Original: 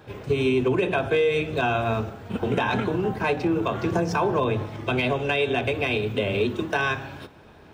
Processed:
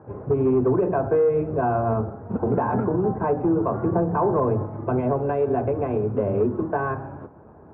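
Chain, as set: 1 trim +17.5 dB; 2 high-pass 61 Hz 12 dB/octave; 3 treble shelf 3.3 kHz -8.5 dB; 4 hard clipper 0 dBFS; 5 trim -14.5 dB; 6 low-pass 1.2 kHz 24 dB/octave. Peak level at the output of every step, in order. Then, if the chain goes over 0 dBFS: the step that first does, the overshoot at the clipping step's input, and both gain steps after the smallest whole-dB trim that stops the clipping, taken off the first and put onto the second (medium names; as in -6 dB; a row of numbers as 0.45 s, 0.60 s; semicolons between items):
+4.0 dBFS, +6.0 dBFS, +5.5 dBFS, 0.0 dBFS, -14.5 dBFS, -13.0 dBFS; step 1, 5.5 dB; step 1 +11.5 dB, step 5 -8.5 dB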